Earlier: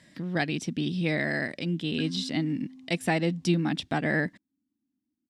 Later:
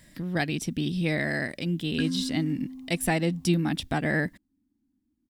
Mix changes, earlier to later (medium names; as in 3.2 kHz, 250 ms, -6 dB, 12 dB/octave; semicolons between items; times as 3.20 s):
background +7.0 dB; master: remove band-pass 130–6400 Hz